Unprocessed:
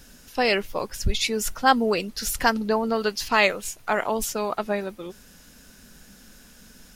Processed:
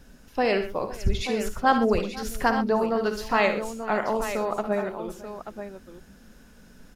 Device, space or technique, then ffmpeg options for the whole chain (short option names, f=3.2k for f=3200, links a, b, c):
through cloth: -af "highshelf=f=2.3k:g=-12.5,aecho=1:1:56|74|122|503|884:0.299|0.251|0.188|0.106|0.316"